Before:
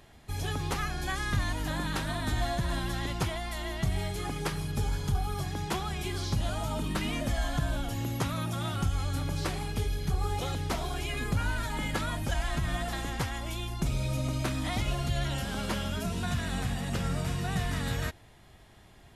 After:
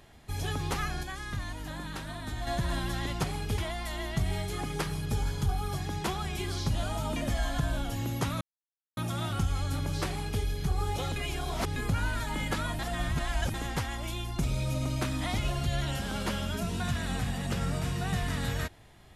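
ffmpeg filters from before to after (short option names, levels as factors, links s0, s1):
-filter_complex "[0:a]asplit=11[s0][s1][s2][s3][s4][s5][s6][s7][s8][s9][s10];[s0]atrim=end=1.032[s11];[s1]atrim=start=1.028:end=2.472,asetpts=PTS-STARTPTS,volume=0.473[s12];[s2]atrim=start=2.468:end=3.242[s13];[s3]atrim=start=9.508:end=9.852[s14];[s4]atrim=start=3.238:end=6.822[s15];[s5]atrim=start=7.148:end=8.4,asetpts=PTS-STARTPTS,afade=t=out:st=1.248:d=0.004:c=hsin,apad=pad_dur=0.56[s16];[s6]atrim=start=8.4:end=10.592,asetpts=PTS-STARTPTS,afade=t=in:d=0.004:c=hsin[s17];[s7]atrim=start=10.588:end=11.192,asetpts=PTS-STARTPTS,areverse[s18];[s8]atrim=start=11.188:end=12.222[s19];[s9]atrim=start=12.218:end=12.972,asetpts=PTS-STARTPTS,areverse[s20];[s10]atrim=start=12.968[s21];[s11][s12]acrossfade=d=0.004:c1=hsin:c2=hsin[s22];[s22][s13]acrossfade=d=0.004:c1=hsin:c2=hsin[s23];[s23][s14]acrossfade=d=0.004:c1=hsin:c2=hsin[s24];[s24][s15]acrossfade=d=0.004:c1=hsin:c2=hsin[s25];[s16][s17]concat=n=2:v=0:a=1[s26];[s25][s26]acrossfade=d=0.004:c1=hsin:c2=hsin[s27];[s27][s18]acrossfade=d=0.004:c1=hsin:c2=hsin[s28];[s28][s19]acrossfade=d=0.004:c1=hsin:c2=hsin[s29];[s29][s20]acrossfade=d=0.004:c1=hsin:c2=hsin[s30];[s30][s21]acrossfade=d=0.004:c1=hsin:c2=hsin"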